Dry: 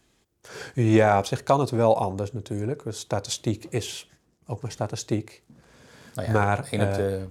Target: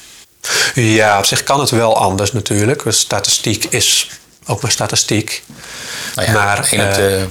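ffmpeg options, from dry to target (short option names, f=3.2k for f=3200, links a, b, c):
-af "tiltshelf=f=1.1k:g=-9,aeval=exprs='clip(val(0),-1,0.2)':c=same,alimiter=level_in=24.5dB:limit=-1dB:release=50:level=0:latency=1,volume=-1dB"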